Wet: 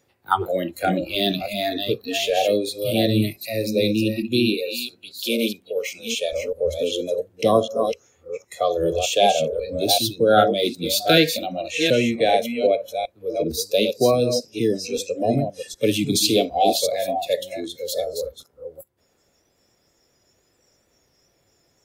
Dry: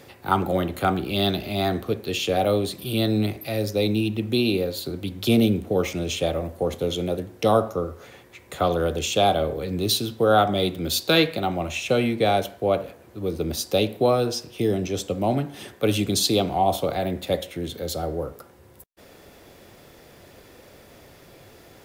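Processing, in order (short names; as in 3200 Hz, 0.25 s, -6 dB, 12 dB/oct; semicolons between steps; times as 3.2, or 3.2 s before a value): reverse delay 0.384 s, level -5 dB; 4.54–6.33 HPF 560 Hz 6 dB/oct; spectral noise reduction 21 dB; gain +2.5 dB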